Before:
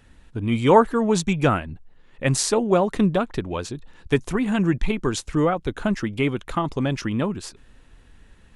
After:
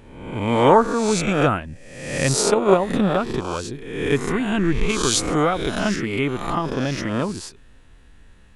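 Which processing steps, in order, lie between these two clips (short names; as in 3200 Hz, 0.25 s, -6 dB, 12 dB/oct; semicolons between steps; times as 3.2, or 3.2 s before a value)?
spectral swells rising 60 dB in 0.91 s; 2.35–2.9 transient shaper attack +8 dB, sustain -7 dB; 4.89–5.96 high shelf 2100 Hz +9.5 dB; gain -1.5 dB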